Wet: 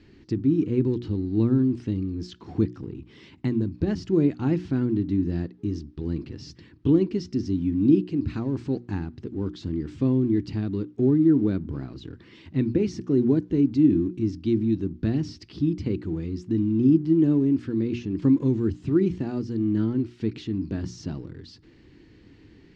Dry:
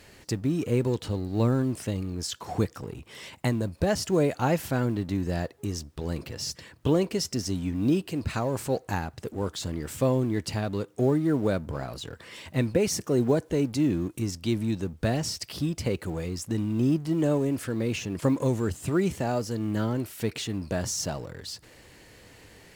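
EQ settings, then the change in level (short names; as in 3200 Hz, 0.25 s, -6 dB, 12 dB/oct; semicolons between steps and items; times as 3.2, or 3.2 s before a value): LPF 5000 Hz 24 dB/oct; resonant low shelf 430 Hz +9.5 dB, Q 3; notches 60/120/180/240/300/360 Hz; -8.0 dB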